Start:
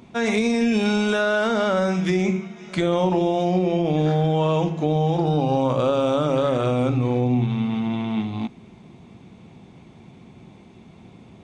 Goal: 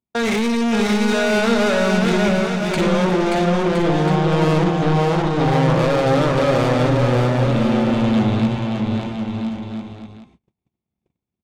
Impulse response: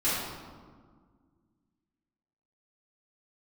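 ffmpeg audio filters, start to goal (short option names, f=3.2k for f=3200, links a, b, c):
-filter_complex "[0:a]bandreject=f=263:t=h:w=4,bandreject=f=526:t=h:w=4,bandreject=f=789:t=h:w=4,bandreject=f=1.052k:t=h:w=4,bandreject=f=1.315k:t=h:w=4,bandreject=f=1.578k:t=h:w=4,bandreject=f=1.841k:t=h:w=4,bandreject=f=2.104k:t=h:w=4,bandreject=f=2.367k:t=h:w=4,bandreject=f=2.63k:t=h:w=4,bandreject=f=2.893k:t=h:w=4,bandreject=f=3.156k:t=h:w=4,bandreject=f=3.419k:t=h:w=4,bandreject=f=3.682k:t=h:w=4,bandreject=f=3.945k:t=h:w=4,bandreject=f=4.208k:t=h:w=4,bandreject=f=4.471k:t=h:w=4,bandreject=f=4.734k:t=h:w=4,bandreject=f=4.997k:t=h:w=4,bandreject=f=5.26k:t=h:w=4,bandreject=f=5.523k:t=h:w=4,bandreject=f=5.786k:t=h:w=4,bandreject=f=6.049k:t=h:w=4,bandreject=f=6.312k:t=h:w=4,bandreject=f=6.575k:t=h:w=4,bandreject=f=6.838k:t=h:w=4,bandreject=f=7.101k:t=h:w=4,bandreject=f=7.364k:t=h:w=4,bandreject=f=7.627k:t=h:w=4,bandreject=f=7.89k:t=h:w=4,bandreject=f=8.153k:t=h:w=4,bandreject=f=8.416k:t=h:w=4,bandreject=f=8.679k:t=h:w=4,bandreject=f=8.942k:t=h:w=4,agate=range=-57dB:threshold=-38dB:ratio=16:detection=peak,equalizer=f=65:t=o:w=0.98:g=8.5,asplit=2[a][b];[b]alimiter=limit=-21dB:level=0:latency=1,volume=-2.5dB[c];[a][c]amix=inputs=2:normalize=0,asoftclip=type=tanh:threshold=-25.5dB,asplit=2[d][e];[e]aecho=0:1:580|1015|1341|1586|1769:0.631|0.398|0.251|0.158|0.1[f];[d][f]amix=inputs=2:normalize=0,volume=8.5dB"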